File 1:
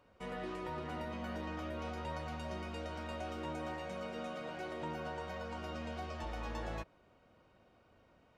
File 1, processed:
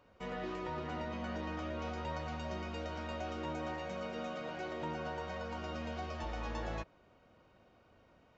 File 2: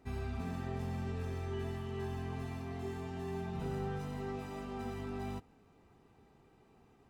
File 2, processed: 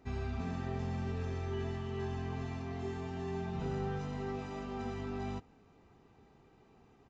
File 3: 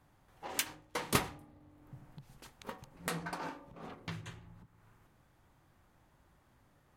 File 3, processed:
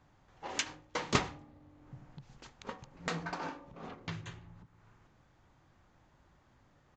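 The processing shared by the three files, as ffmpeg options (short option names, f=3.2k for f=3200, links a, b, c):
-af "aresample=16000,aresample=44100,volume=1.5dB"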